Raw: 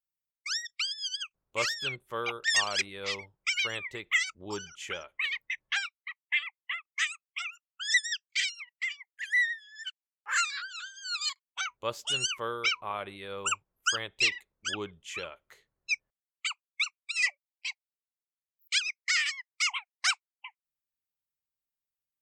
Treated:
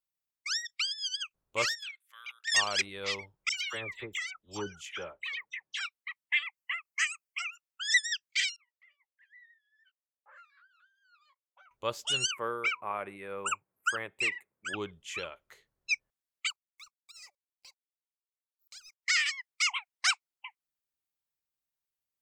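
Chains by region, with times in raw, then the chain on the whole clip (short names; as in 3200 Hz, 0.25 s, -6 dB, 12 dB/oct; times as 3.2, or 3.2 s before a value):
1.75–2.52 level quantiser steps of 9 dB + ladder high-pass 1500 Hz, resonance 30% + high shelf 8000 Hz +8.5 dB
3.49–5.81 dispersion lows, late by 84 ms, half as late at 1800 Hz + compressor 10:1, threshold -32 dBFS + three-band expander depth 100%
6.57–7.49 Butterworth band-stop 3600 Hz, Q 3.6 + high shelf 7800 Hz +5 dB
8.56–11.71 compressor 1.5:1, threshold -48 dBFS + ladder band-pass 600 Hz, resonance 75% + doubler 15 ms -11 dB
12.31–14.74 HPF 130 Hz + band shelf 4500 Hz -15.5 dB 1.3 oct
16.5–19.03 G.711 law mismatch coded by A + band shelf 2400 Hz -14.5 dB 1.2 oct + compressor 2.5:1, threshold -55 dBFS
whole clip: dry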